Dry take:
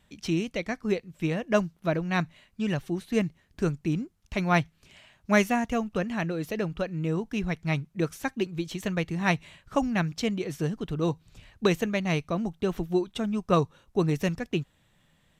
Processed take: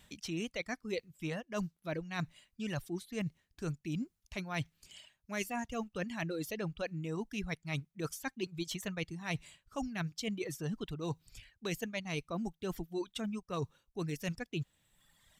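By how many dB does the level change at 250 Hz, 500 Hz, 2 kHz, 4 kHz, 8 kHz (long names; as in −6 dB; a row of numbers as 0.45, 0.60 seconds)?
−11.0, −12.0, −9.5, −6.0, −4.0 decibels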